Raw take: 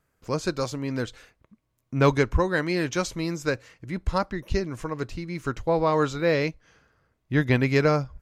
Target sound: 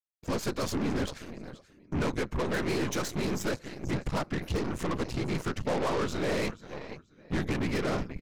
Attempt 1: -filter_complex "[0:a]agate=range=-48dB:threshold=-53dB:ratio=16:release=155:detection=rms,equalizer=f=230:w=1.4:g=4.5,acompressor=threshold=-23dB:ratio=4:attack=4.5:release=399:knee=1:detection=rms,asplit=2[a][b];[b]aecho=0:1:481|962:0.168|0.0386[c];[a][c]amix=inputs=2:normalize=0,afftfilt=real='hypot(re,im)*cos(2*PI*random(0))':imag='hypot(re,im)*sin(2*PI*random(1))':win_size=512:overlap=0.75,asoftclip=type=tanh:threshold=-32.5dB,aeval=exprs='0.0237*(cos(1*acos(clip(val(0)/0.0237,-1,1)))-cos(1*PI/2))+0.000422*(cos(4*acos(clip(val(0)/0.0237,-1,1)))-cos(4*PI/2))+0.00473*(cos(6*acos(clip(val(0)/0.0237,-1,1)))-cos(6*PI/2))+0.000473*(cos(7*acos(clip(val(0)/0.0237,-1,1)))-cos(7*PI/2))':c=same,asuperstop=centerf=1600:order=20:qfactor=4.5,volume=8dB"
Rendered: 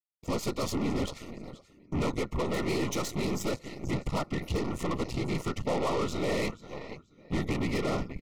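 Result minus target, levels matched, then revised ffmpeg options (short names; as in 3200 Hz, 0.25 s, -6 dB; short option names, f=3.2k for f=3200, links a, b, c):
2000 Hz band -2.5 dB
-filter_complex "[0:a]agate=range=-48dB:threshold=-53dB:ratio=16:release=155:detection=rms,equalizer=f=230:w=1.4:g=4.5,acompressor=threshold=-23dB:ratio=4:attack=4.5:release=399:knee=1:detection=rms,asplit=2[a][b];[b]aecho=0:1:481|962:0.168|0.0386[c];[a][c]amix=inputs=2:normalize=0,afftfilt=real='hypot(re,im)*cos(2*PI*random(0))':imag='hypot(re,im)*sin(2*PI*random(1))':win_size=512:overlap=0.75,asoftclip=type=tanh:threshold=-32.5dB,aeval=exprs='0.0237*(cos(1*acos(clip(val(0)/0.0237,-1,1)))-cos(1*PI/2))+0.000422*(cos(4*acos(clip(val(0)/0.0237,-1,1)))-cos(4*PI/2))+0.00473*(cos(6*acos(clip(val(0)/0.0237,-1,1)))-cos(6*PI/2))+0.000473*(cos(7*acos(clip(val(0)/0.0237,-1,1)))-cos(7*PI/2))':c=same,volume=8dB"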